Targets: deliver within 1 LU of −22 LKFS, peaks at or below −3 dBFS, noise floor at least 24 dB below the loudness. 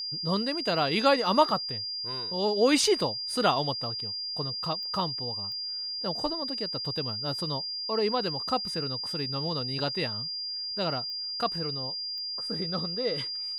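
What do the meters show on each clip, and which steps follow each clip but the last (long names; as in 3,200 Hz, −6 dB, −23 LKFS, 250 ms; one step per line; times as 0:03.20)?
number of clicks 4; interfering tone 4,800 Hz; level of the tone −32 dBFS; integrated loudness −28.5 LKFS; sample peak −7.5 dBFS; target loudness −22.0 LKFS
→ click removal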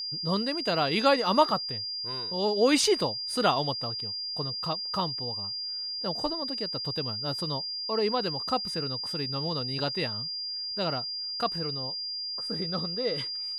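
number of clicks 0; interfering tone 4,800 Hz; level of the tone −32 dBFS
→ notch filter 4,800 Hz, Q 30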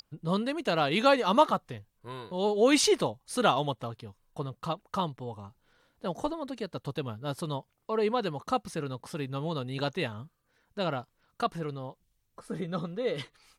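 interfering tone none found; integrated loudness −30.0 LKFS; sample peak −7.5 dBFS; target loudness −22.0 LKFS
→ level +8 dB
brickwall limiter −3 dBFS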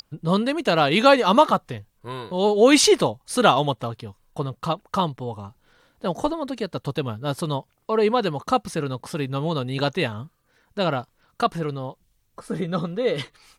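integrated loudness −22.5 LKFS; sample peak −3.0 dBFS; background noise floor −67 dBFS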